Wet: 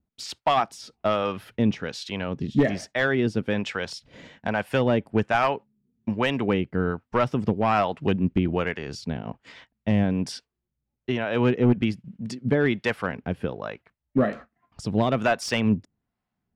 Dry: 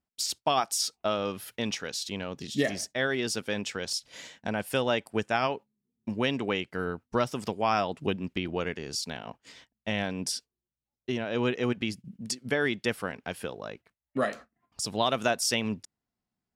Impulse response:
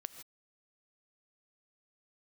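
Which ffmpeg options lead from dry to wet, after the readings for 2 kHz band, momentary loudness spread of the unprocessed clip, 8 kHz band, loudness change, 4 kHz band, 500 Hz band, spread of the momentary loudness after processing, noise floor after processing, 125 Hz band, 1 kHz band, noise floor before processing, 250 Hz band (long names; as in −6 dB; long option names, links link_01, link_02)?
+3.5 dB, 12 LU, −9.0 dB, +5.0 dB, −2.5 dB, +5.0 dB, 12 LU, −83 dBFS, +10.5 dB, +4.5 dB, below −85 dBFS, +8.5 dB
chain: -filter_complex "[0:a]acrossover=split=530[link_01][link_02];[link_01]aeval=exprs='val(0)*(1-0.7/2+0.7/2*cos(2*PI*1.2*n/s))':channel_layout=same[link_03];[link_02]aeval=exprs='val(0)*(1-0.7/2-0.7/2*cos(2*PI*1.2*n/s))':channel_layout=same[link_04];[link_03][link_04]amix=inputs=2:normalize=0,highshelf=frequency=9200:gain=-7.5,asoftclip=type=hard:threshold=-23dB,bass=frequency=250:gain=6,treble=frequency=4000:gain=-14,volume=8.5dB"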